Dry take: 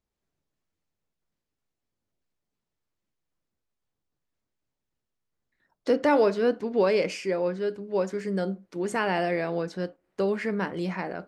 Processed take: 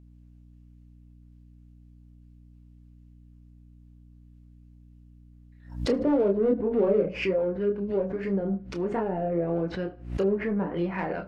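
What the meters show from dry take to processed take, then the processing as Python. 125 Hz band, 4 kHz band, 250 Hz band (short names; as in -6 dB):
+3.0 dB, -4.5 dB, +2.0 dB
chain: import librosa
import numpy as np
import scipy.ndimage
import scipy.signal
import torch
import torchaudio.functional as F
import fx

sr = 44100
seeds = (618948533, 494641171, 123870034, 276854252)

p1 = fx.env_lowpass_down(x, sr, base_hz=490.0, full_db=-22.5)
p2 = fx.peak_eq(p1, sr, hz=2700.0, db=5.5, octaves=0.49)
p3 = 10.0 ** (-29.5 / 20.0) * np.tanh(p2 / 10.0 ** (-29.5 / 20.0))
p4 = p2 + (p3 * 10.0 ** (-8.0 / 20.0))
p5 = fx.chorus_voices(p4, sr, voices=6, hz=0.3, base_ms=27, depth_ms=3.7, mix_pct=40)
p6 = fx.add_hum(p5, sr, base_hz=60, snr_db=22)
p7 = p6 + fx.echo_feedback(p6, sr, ms=74, feedback_pct=36, wet_db=-23.0, dry=0)
p8 = fx.pre_swell(p7, sr, db_per_s=110.0)
y = p8 * 10.0 ** (3.0 / 20.0)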